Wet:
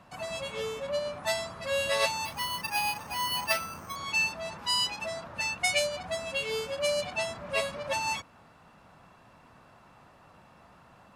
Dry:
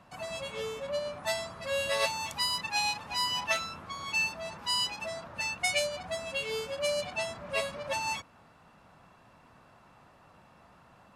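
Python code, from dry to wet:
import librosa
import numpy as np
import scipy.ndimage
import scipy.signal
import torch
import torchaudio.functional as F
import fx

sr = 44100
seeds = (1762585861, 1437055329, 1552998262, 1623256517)

y = fx.resample_bad(x, sr, factor=6, down='filtered', up='hold', at=(2.25, 3.96))
y = F.gain(torch.from_numpy(y), 2.0).numpy()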